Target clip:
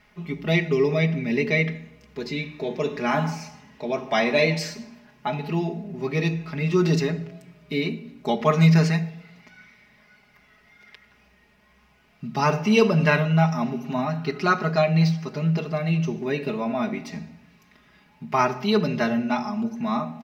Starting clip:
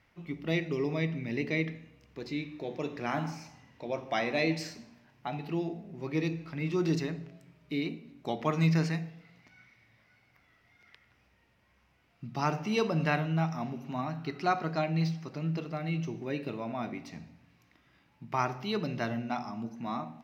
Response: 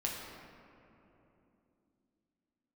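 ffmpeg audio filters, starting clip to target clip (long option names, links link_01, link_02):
-af "aecho=1:1:4.8:0.88,volume=7dB"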